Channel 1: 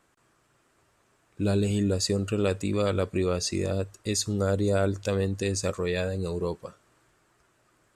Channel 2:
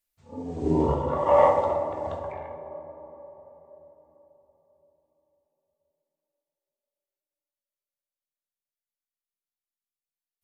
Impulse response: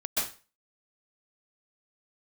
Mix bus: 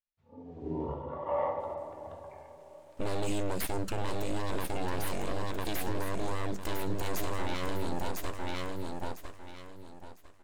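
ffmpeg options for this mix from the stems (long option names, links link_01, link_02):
-filter_complex "[0:a]aeval=exprs='abs(val(0))':channel_layout=same,adelay=1600,volume=0dB,asplit=2[link_01][link_02];[link_02]volume=-5.5dB[link_03];[1:a]lowpass=3300,volume=-12.5dB[link_04];[link_03]aecho=0:1:1002|2004|3006|4008:1|0.26|0.0676|0.0176[link_05];[link_01][link_04][link_05]amix=inputs=3:normalize=0,alimiter=limit=-21dB:level=0:latency=1:release=37"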